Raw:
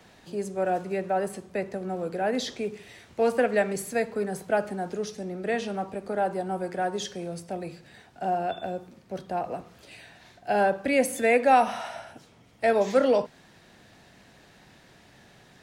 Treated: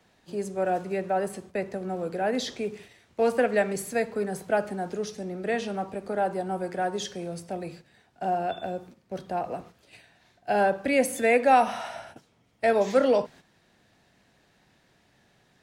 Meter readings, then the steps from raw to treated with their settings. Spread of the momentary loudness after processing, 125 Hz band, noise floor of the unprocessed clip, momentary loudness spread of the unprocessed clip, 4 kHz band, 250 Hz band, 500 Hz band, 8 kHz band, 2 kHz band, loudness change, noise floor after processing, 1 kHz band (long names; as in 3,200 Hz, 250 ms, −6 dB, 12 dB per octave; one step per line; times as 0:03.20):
14 LU, 0.0 dB, −56 dBFS, 14 LU, 0.0 dB, 0.0 dB, 0.0 dB, 0.0 dB, 0.0 dB, 0.0 dB, −65 dBFS, 0.0 dB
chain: noise gate −46 dBFS, range −9 dB